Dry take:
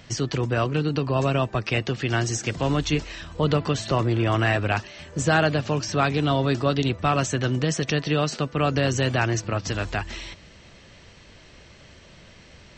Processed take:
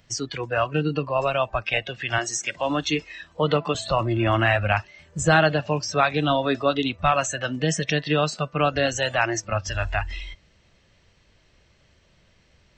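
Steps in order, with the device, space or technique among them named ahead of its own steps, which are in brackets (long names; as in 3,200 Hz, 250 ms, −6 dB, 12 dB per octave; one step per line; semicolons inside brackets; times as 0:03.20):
noise reduction from a noise print of the clip's start 15 dB
0:02.18–0:03.75: high-pass filter 200 Hz 12 dB per octave
low shelf boost with a cut just above (low-shelf EQ 78 Hz +5 dB; parametric band 260 Hz −2 dB)
level +3 dB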